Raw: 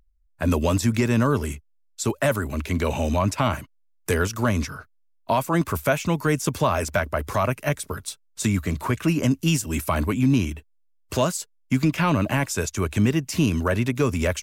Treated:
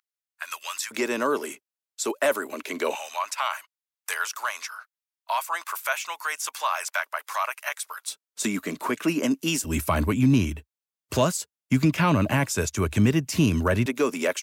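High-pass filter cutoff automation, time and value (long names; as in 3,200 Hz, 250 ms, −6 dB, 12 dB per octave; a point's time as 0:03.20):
high-pass filter 24 dB per octave
1,200 Hz
from 0:00.91 320 Hz
from 0:02.95 880 Hz
from 0:08.09 230 Hz
from 0:09.64 61 Hz
from 0:13.86 260 Hz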